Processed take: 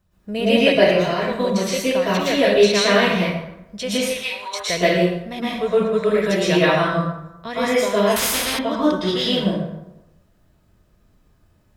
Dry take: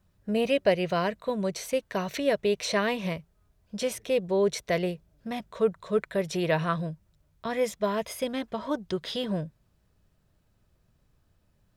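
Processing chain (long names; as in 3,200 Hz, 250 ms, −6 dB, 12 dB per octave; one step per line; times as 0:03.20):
0:00.72–0:01.24: compressor whose output falls as the input rises −31 dBFS, ratio −1
0:04.06–0:04.56: high-pass filter 950 Hz 24 dB per octave
dynamic equaliser 3,500 Hz, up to +7 dB, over −47 dBFS, Q 0.79
dense smooth reverb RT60 0.93 s, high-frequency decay 0.6×, pre-delay 100 ms, DRR −9 dB
0:08.16–0:08.59: every bin compressed towards the loudest bin 4 to 1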